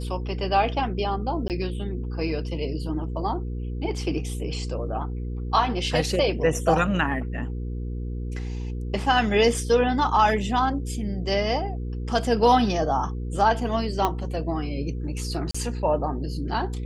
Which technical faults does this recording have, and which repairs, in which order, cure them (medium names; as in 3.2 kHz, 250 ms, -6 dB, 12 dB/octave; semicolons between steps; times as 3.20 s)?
hum 60 Hz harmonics 8 -30 dBFS
1.48–1.50 s: dropout 18 ms
14.05 s: pop -9 dBFS
15.51–15.54 s: dropout 35 ms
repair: de-click; de-hum 60 Hz, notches 8; interpolate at 1.48 s, 18 ms; interpolate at 15.51 s, 35 ms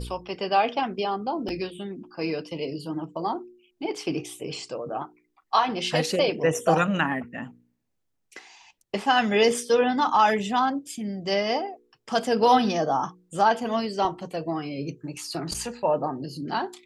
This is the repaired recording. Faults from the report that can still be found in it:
14.05 s: pop